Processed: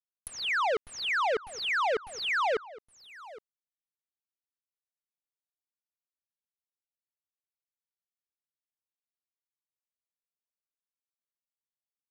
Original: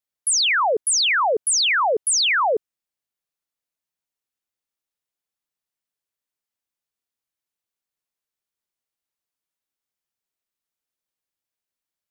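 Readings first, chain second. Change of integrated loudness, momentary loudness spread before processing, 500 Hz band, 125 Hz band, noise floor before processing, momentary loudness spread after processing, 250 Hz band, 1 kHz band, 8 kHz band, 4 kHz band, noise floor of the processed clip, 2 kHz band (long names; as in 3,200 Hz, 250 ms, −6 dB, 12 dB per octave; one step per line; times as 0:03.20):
−11.0 dB, 4 LU, −8.0 dB, can't be measured, below −85 dBFS, 20 LU, −7.5 dB, −8.0 dB, −25.5 dB, −14.0 dB, below −85 dBFS, −8.5 dB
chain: fuzz pedal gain 48 dB, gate −53 dBFS
brickwall limiter −20 dBFS, peak gain reduction 9.5 dB
bit-depth reduction 6 bits, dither none
slap from a distant wall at 140 metres, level −18 dB
treble cut that deepens with the level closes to 2,800 Hz, closed at −26 dBFS
level −5.5 dB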